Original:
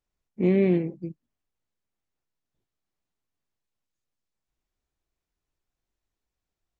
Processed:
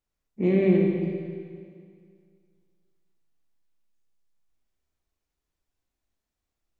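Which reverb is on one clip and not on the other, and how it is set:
four-comb reverb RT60 2.1 s, combs from 28 ms, DRR 0.5 dB
level −1.5 dB

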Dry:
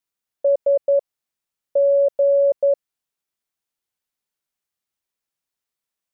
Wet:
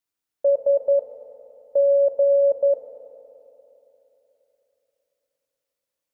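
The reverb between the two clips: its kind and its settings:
feedback delay network reverb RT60 3.5 s, high-frequency decay 0.95×, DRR 3.5 dB
level −1.5 dB

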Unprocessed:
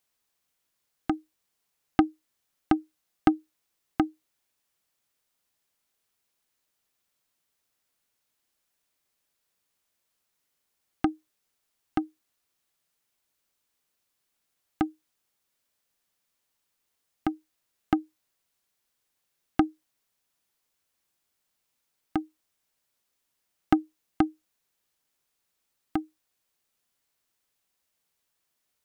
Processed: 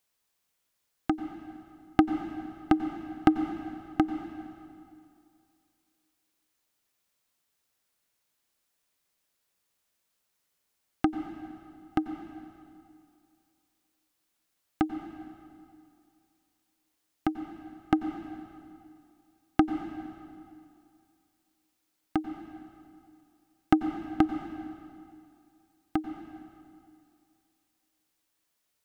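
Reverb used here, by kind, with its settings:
dense smooth reverb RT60 2.4 s, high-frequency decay 0.85×, pre-delay 80 ms, DRR 8 dB

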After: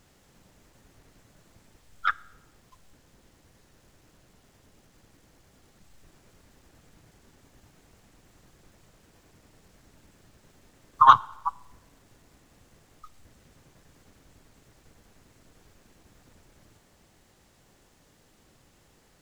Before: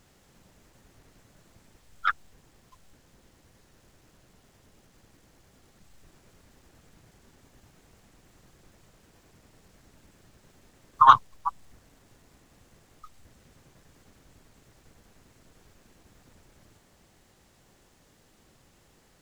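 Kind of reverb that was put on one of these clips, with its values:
feedback delay network reverb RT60 0.95 s, high-frequency decay 0.85×, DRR 19.5 dB

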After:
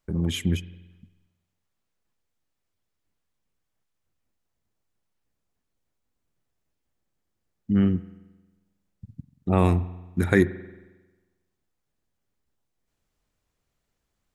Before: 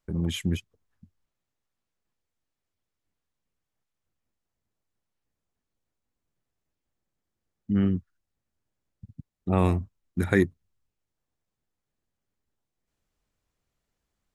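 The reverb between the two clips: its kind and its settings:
spring reverb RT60 1.2 s, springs 45 ms, chirp 65 ms, DRR 16 dB
level +2.5 dB

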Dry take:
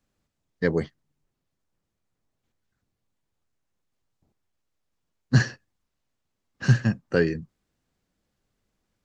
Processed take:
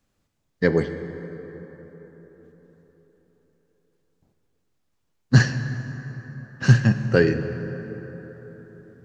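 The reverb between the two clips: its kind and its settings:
dense smooth reverb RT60 4.5 s, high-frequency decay 0.45×, DRR 8.5 dB
level +4 dB

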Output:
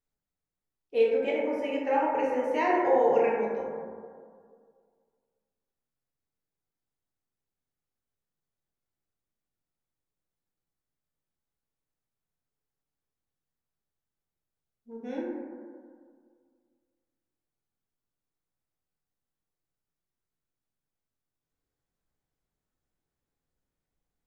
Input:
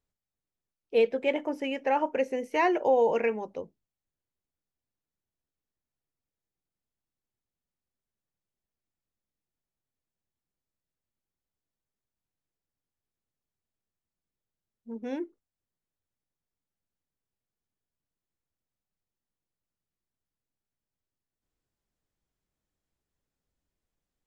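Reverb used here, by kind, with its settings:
dense smooth reverb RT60 2 s, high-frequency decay 0.25×, DRR −5.5 dB
level −6.5 dB

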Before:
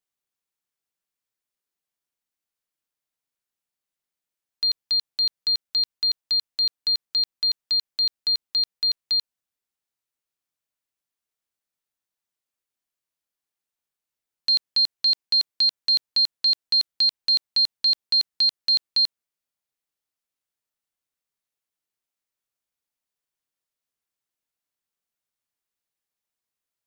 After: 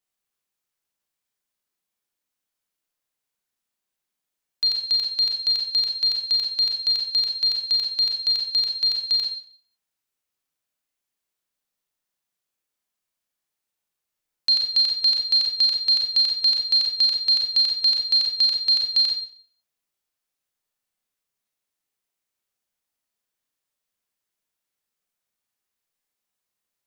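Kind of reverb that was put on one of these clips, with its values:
four-comb reverb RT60 0.5 s, combs from 30 ms, DRR 1 dB
level +1.5 dB

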